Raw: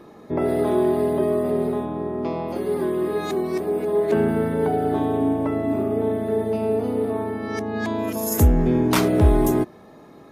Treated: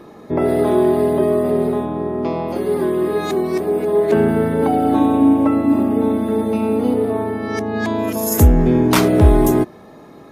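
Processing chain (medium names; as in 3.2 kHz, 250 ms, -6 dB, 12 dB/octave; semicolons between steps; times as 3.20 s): 4.62–6.94 s: comb 3.7 ms, depth 80%; trim +5 dB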